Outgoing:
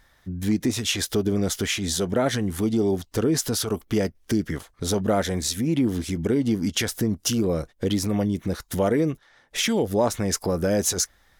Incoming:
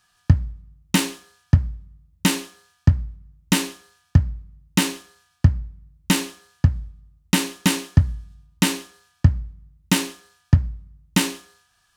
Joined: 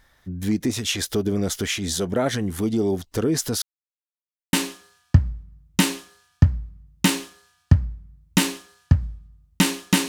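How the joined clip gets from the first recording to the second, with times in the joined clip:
outgoing
3.62–4.53 mute
4.53 switch to incoming from 2.26 s

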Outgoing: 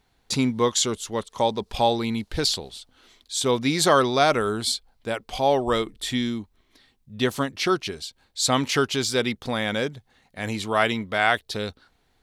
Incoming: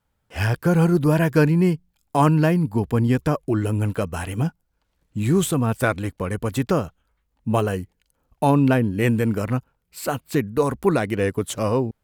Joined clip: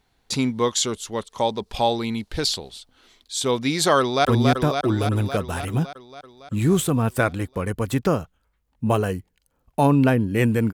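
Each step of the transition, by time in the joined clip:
outgoing
3.99–4.25 echo throw 0.28 s, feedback 70%, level -3 dB
4.25 switch to incoming from 2.89 s

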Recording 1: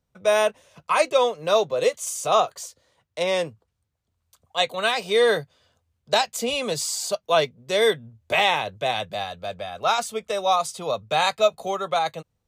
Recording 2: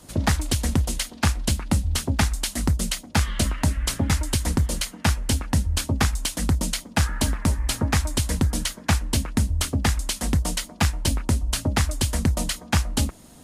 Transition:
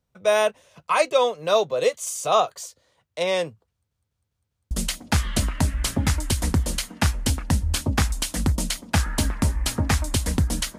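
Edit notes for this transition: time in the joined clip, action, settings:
recording 1
3.71 stutter in place 0.20 s, 5 plays
4.71 switch to recording 2 from 2.74 s

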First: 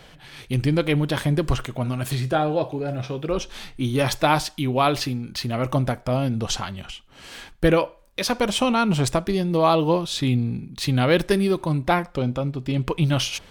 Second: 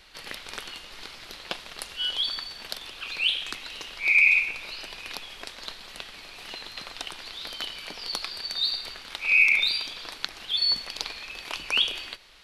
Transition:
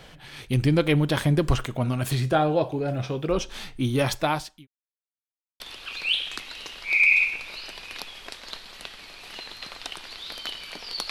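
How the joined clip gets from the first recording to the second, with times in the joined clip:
first
3.56–4.67 fade out equal-power
4.67–5.6 mute
5.6 switch to second from 2.75 s

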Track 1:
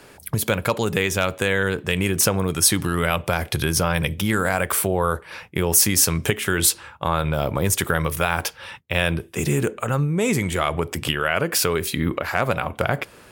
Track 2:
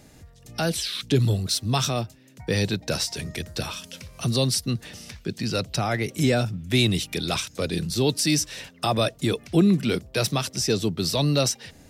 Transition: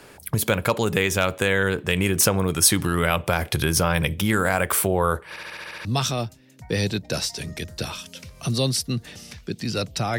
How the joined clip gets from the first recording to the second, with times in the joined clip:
track 1
5.29 stutter in place 0.07 s, 8 plays
5.85 switch to track 2 from 1.63 s

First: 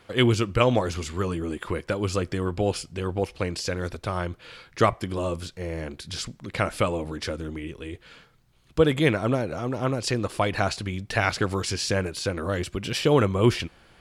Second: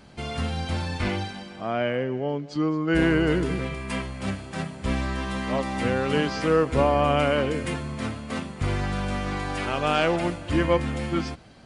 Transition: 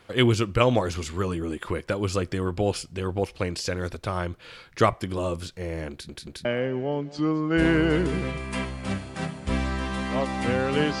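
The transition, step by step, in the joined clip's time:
first
5.91 stutter in place 0.18 s, 3 plays
6.45 switch to second from 1.82 s

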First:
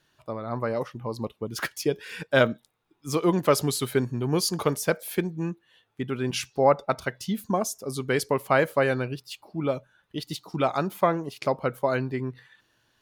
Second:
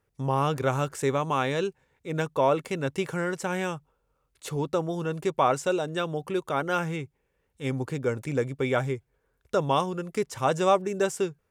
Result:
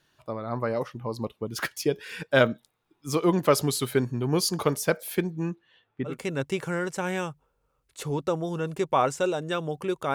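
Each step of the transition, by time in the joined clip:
first
5.55–6.18 LPF 6600 Hz -> 1400 Hz
6.11 switch to second from 2.57 s, crossfade 0.14 s

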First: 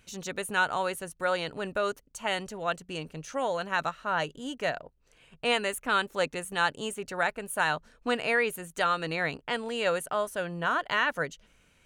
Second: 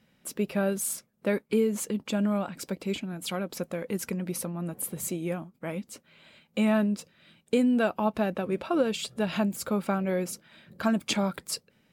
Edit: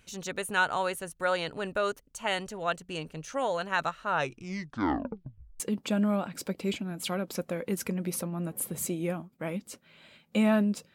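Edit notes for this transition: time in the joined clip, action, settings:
first
4.09 tape stop 1.51 s
5.6 switch to second from 1.82 s

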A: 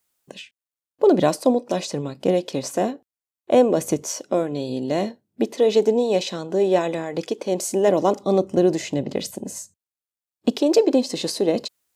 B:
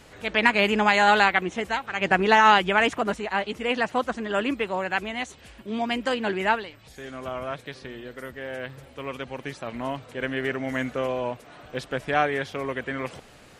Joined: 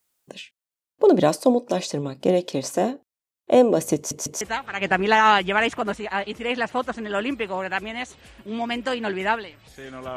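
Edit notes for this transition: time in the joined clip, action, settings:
A
3.96 stutter in place 0.15 s, 3 plays
4.41 switch to B from 1.61 s

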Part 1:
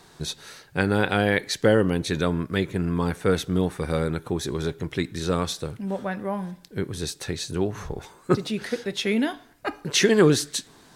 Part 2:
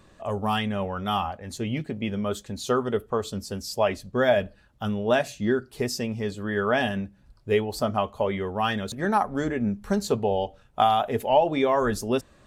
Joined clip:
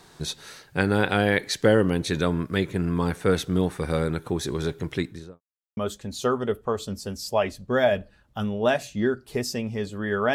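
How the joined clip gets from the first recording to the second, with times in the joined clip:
part 1
4.92–5.41 studio fade out
5.41–5.77 mute
5.77 switch to part 2 from 2.22 s

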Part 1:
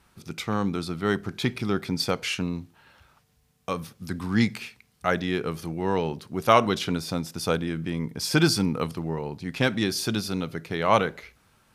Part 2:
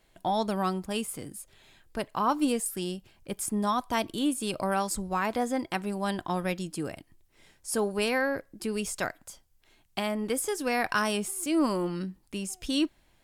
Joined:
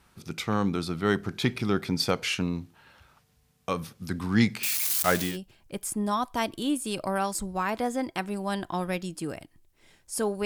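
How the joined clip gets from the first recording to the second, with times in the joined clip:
part 1
4.63–5.38 switching spikes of -19 dBFS
5.3 switch to part 2 from 2.86 s, crossfade 0.16 s

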